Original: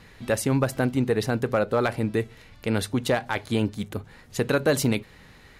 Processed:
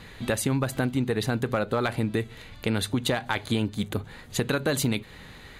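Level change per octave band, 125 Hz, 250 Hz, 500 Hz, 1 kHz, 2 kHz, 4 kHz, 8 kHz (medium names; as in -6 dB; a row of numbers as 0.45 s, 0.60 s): -1.0 dB, -1.5 dB, -4.5 dB, -2.0 dB, -1.0 dB, +2.5 dB, +0.5 dB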